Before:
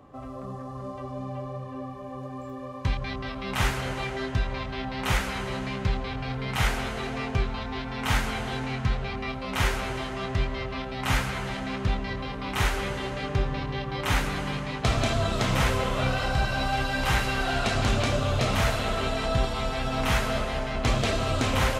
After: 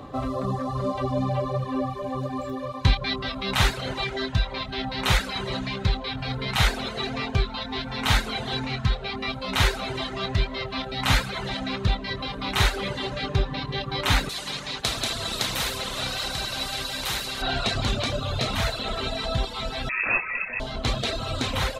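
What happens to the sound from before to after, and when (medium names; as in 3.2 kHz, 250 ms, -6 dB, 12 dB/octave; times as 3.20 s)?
14.29–17.42 s: spectrum-flattening compressor 2:1
19.89–20.60 s: frequency inversion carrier 2.6 kHz
whole clip: reverb removal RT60 0.99 s; peaking EQ 3.9 kHz +10 dB 0.39 oct; gain riding 2 s; trim +2 dB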